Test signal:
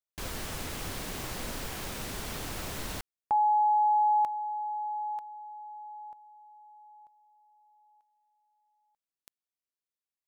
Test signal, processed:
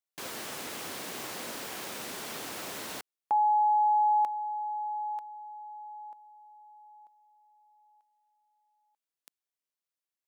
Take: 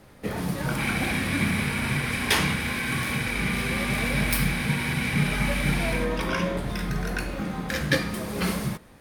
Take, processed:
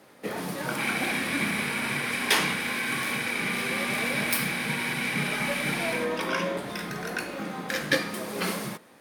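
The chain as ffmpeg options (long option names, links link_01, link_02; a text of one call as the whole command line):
ffmpeg -i in.wav -af "highpass=260" out.wav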